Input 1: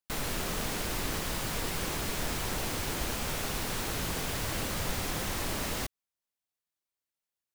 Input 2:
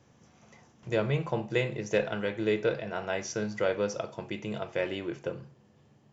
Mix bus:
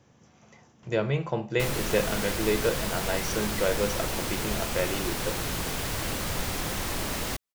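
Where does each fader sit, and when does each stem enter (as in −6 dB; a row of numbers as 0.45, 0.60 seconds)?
+2.5, +1.5 decibels; 1.50, 0.00 seconds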